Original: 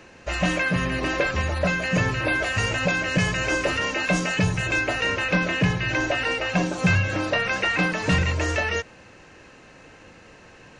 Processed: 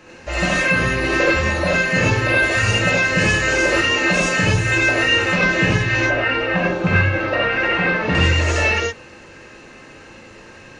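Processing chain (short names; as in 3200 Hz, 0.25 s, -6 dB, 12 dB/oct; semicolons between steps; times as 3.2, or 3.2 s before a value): 6–8.15 LPF 2500 Hz 12 dB/oct; non-linear reverb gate 0.12 s rising, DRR -6 dB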